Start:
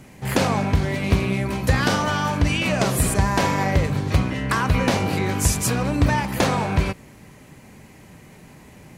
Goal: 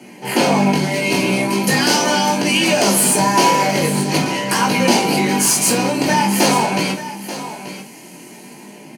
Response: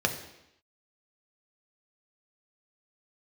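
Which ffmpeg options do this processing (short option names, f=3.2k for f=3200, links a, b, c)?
-filter_complex "[0:a]highpass=260,equalizer=f=1.2k:t=o:w=0.3:g=-8,acrossover=split=4800[a][b];[b]dynaudnorm=f=250:g=5:m=10.5dB[c];[a][c]amix=inputs=2:normalize=0,flanger=delay=16.5:depth=6:speed=0.43,asplit=2[d][e];[e]acrusher=bits=3:mix=0:aa=0.000001,volume=-12dB[f];[d][f]amix=inputs=2:normalize=0,asoftclip=type=tanh:threshold=-20.5dB,aecho=1:1:883:0.224[g];[1:a]atrim=start_sample=2205,atrim=end_sample=6174,asetrate=79380,aresample=44100[h];[g][h]afir=irnorm=-1:irlink=0,volume=6dB"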